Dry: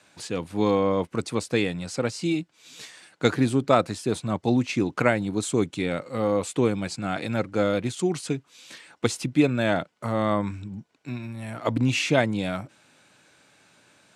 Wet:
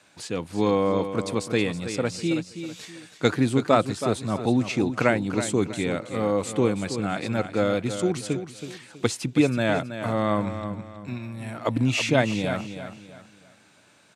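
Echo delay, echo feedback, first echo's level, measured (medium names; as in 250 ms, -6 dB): 324 ms, 33%, -10.0 dB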